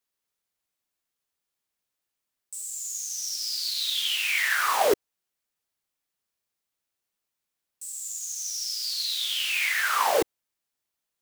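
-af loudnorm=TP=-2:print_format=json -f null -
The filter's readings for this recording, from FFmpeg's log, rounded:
"input_i" : "-25.8",
"input_tp" : "-9.4",
"input_lra" : "13.1",
"input_thresh" : "-36.0",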